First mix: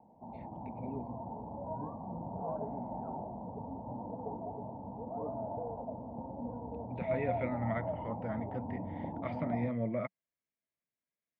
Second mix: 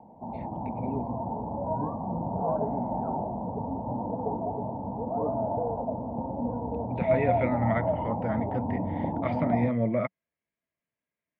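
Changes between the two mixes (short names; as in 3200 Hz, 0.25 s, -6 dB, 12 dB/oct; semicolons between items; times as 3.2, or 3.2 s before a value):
speech +8.0 dB; background +10.0 dB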